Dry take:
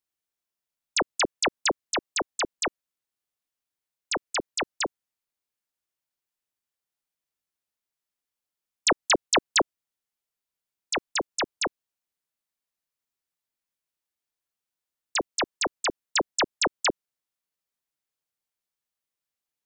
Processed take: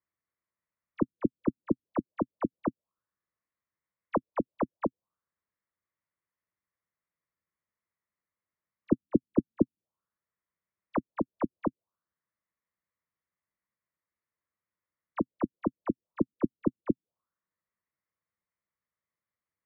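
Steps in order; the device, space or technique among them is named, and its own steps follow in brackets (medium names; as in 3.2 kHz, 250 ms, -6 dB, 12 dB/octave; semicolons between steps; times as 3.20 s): tilt shelf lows +9 dB, about 840 Hz; envelope filter bass rig (touch-sensitive low-pass 260–2000 Hz down, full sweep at -23.5 dBFS; cabinet simulation 77–2300 Hz, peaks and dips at 130 Hz -6 dB, 260 Hz -10 dB, 400 Hz -7 dB, 770 Hz -8 dB, 1.1 kHz +6 dB, 1.6 kHz -3 dB)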